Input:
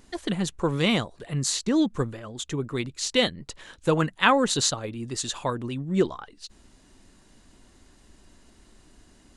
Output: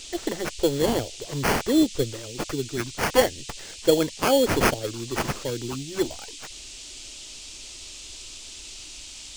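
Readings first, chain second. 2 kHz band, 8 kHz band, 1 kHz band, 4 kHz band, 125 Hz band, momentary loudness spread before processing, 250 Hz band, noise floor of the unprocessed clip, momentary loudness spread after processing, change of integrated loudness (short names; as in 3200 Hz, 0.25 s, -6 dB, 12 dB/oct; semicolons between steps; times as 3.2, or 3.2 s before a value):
-0.5 dB, -1.0 dB, 0.0 dB, -1.0 dB, -2.5 dB, 14 LU, +0.5 dB, -57 dBFS, 17 LU, +1.0 dB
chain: fixed phaser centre 450 Hz, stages 4; LFO notch saw down 0.32 Hz 370–4800 Hz; sample-rate reducer 3800 Hz, jitter 0%; band noise 2500–8100 Hz -47 dBFS; gain +5.5 dB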